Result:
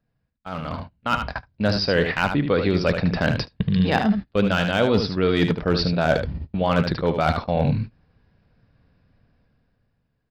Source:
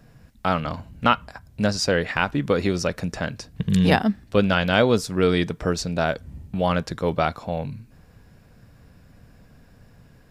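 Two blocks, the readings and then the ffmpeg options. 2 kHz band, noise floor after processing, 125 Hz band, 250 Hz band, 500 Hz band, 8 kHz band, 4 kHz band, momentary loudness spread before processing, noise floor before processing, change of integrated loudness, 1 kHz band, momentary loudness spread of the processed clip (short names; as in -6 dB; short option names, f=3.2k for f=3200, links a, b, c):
+0.5 dB, -73 dBFS, +2.5 dB, +1.5 dB, +1.0 dB, under -10 dB, +1.0 dB, 12 LU, -53 dBFS, +1.0 dB, -0.5 dB, 10 LU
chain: -filter_complex "[0:a]areverse,acompressor=threshold=-30dB:ratio=8,areverse,aresample=11025,aresample=44100,asoftclip=type=hard:threshold=-22.5dB,asplit=2[a][b];[b]aecho=0:1:75:0.422[c];[a][c]amix=inputs=2:normalize=0,agate=range=-23dB:threshold=-39dB:ratio=16:detection=peak,dynaudnorm=f=120:g=17:m=13dB"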